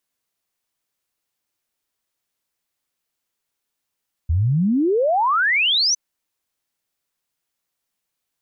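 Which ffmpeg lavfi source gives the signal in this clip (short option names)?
-f lavfi -i "aevalsrc='0.178*clip(min(t,1.66-t)/0.01,0,1)*sin(2*PI*75*1.66/log(6200/75)*(exp(log(6200/75)*t/1.66)-1))':d=1.66:s=44100"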